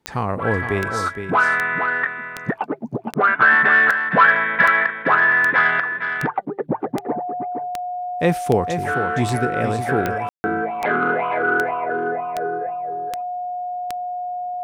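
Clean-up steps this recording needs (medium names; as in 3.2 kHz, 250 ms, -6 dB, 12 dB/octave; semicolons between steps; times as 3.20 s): de-click; band-stop 720 Hz, Q 30; room tone fill 10.29–10.44 s; inverse comb 464 ms -8 dB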